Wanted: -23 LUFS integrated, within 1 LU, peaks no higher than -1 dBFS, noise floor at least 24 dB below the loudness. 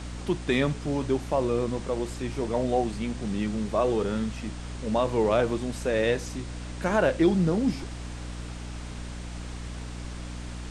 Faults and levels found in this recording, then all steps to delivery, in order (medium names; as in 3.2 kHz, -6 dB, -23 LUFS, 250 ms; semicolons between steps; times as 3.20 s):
hum 60 Hz; highest harmonic 300 Hz; hum level -35 dBFS; noise floor -37 dBFS; noise floor target -52 dBFS; loudness -28.0 LUFS; peak level -10.5 dBFS; loudness target -23.0 LUFS
-> hum notches 60/120/180/240/300 Hz; noise print and reduce 15 dB; trim +5 dB